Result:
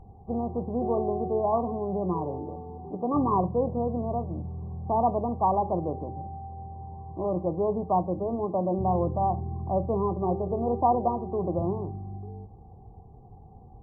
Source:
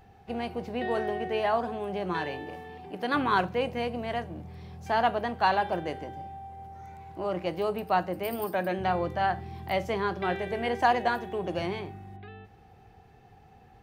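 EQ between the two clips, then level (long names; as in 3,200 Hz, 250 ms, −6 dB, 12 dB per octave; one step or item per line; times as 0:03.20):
linear-phase brick-wall low-pass 1,200 Hz
spectral tilt −2.5 dB per octave
0.0 dB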